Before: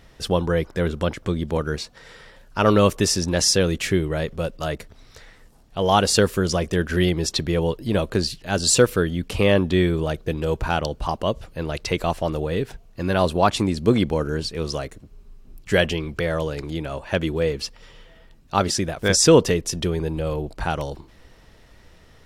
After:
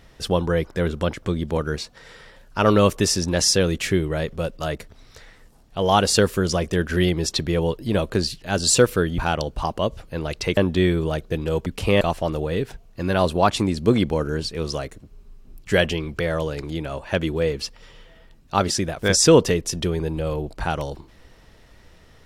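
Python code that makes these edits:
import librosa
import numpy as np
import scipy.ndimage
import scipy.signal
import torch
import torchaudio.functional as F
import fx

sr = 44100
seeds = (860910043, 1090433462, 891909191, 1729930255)

y = fx.edit(x, sr, fx.swap(start_s=9.18, length_s=0.35, other_s=10.62, other_length_s=1.39), tone=tone)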